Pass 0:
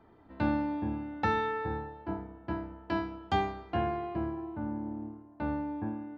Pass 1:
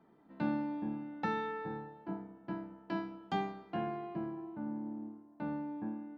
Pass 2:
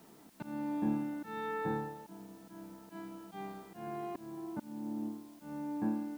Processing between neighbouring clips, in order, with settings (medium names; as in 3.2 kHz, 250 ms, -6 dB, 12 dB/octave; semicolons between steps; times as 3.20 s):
resonant low shelf 120 Hz -11.5 dB, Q 3; trim -7 dB
slow attack 472 ms; word length cut 12-bit, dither triangular; trim +6.5 dB